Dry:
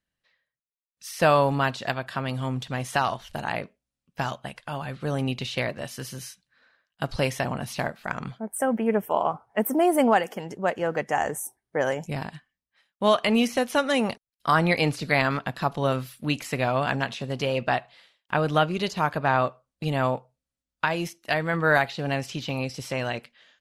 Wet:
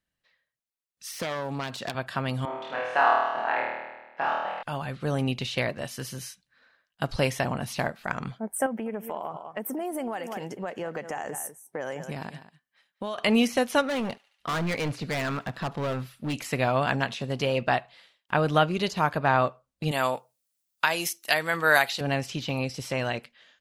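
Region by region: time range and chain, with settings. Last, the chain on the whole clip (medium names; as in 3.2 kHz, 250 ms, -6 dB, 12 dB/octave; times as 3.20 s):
1.12–1.95 s: self-modulated delay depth 0.2 ms + high-pass 120 Hz + compression 8:1, threshold -27 dBFS
2.45–4.63 s: band-pass 540–2000 Hz + flutter echo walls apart 4.4 m, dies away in 1.2 s
8.66–13.18 s: high-pass 130 Hz + delay 198 ms -17 dB + compression, threshold -29 dBFS
13.81–16.34 s: treble shelf 4.2 kHz -10 dB + hard clipper -25.5 dBFS + thinning echo 72 ms, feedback 73%, high-pass 1.1 kHz, level -24 dB
19.91–22.01 s: RIAA curve recording + de-esser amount 30%
whole clip: none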